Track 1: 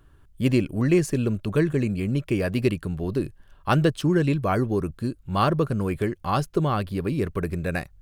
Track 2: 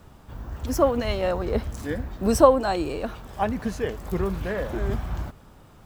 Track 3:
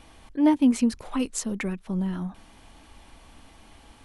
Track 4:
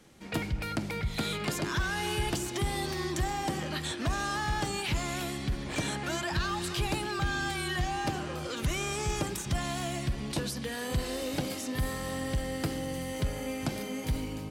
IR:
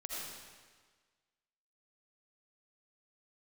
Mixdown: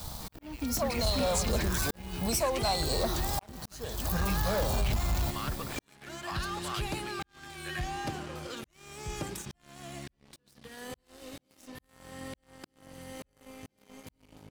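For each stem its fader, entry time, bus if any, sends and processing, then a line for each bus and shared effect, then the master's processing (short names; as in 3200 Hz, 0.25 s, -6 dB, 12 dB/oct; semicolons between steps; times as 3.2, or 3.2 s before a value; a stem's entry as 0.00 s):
-15.0 dB, 0.00 s, no bus, no send, HPF 1400 Hz; limiter -23.5 dBFS, peak gain reduction 11 dB
-2.5 dB, 0.00 s, bus A, no send, high shelf 12000 Hz +11.5 dB; fixed phaser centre 830 Hz, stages 4
-9.5 dB, 0.00 s, bus A, no send, HPF 160 Hz 24 dB/oct
-15.0 dB, 0.00 s, no bus, no send, dry
bus A: 0.0 dB, resonant high shelf 3300 Hz +7 dB, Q 3; compressor 5:1, threshold -35 dBFS, peak gain reduction 18.5 dB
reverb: off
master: auto swell 0.648 s; sample leveller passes 3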